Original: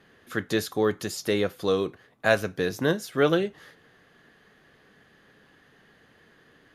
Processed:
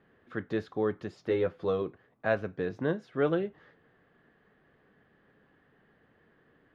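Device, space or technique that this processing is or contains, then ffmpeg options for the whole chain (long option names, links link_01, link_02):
phone in a pocket: -filter_complex "[0:a]lowpass=3200,highshelf=frequency=2400:gain=-11.5,asettb=1/sr,asplit=3[link_01][link_02][link_03];[link_01]atrim=end=1.284[link_04];[link_02]atrim=start=1.28:end=1.82,asetpts=PTS-STARTPTS,afade=type=in:duration=0.004:curve=qsin,afade=type=out:start_time=0.536:duration=0.004:curve=qsin,asplit=2[link_05][link_06];[link_06]adelay=12,volume=-3.5dB[link_07];[link_05][link_07]amix=inputs=2:normalize=0,atrim=end_sample=23814[link_08];[link_03]atrim=start=1.816[link_09];[link_04][link_08]acrossfade=duration=0.004:curve1=hsin:curve2=qsin[link_10];[link_10][link_09]acrossfade=duration=0.004:curve1=qsin:curve2=hsin,volume=-5dB"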